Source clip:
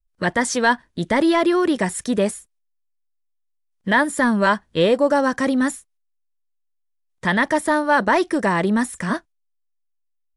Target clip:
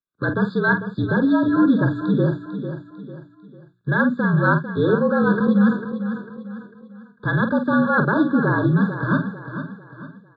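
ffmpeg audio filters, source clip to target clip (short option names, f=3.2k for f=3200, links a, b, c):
-filter_complex "[0:a]firequalizer=gain_entry='entry(370,0);entry(860,-15);entry(1200,-2)':delay=0.05:min_phase=1,areverse,acompressor=threshold=-22dB:ratio=20,areverse,asplit=2[a][b];[b]adelay=47,volume=-8.5dB[c];[a][c]amix=inputs=2:normalize=0,highpass=f=150:t=q:w=0.5412,highpass=f=150:t=q:w=1.307,lowpass=f=3.3k:t=q:w=0.5176,lowpass=f=3.3k:t=q:w=0.7071,lowpass=f=3.3k:t=q:w=1.932,afreqshift=-53,bandreject=f=60:t=h:w=6,bandreject=f=120:t=h:w=6,bandreject=f=180:t=h:w=6,bandreject=f=240:t=h:w=6,bandreject=f=300:t=h:w=6,bandreject=f=360:t=h:w=6,aecho=1:1:448|896|1344|1792:0.316|0.126|0.0506|0.0202,afftfilt=real='re*eq(mod(floor(b*sr/1024/1700),2),0)':imag='im*eq(mod(floor(b*sr/1024/1700),2),0)':win_size=1024:overlap=0.75,volume=8.5dB"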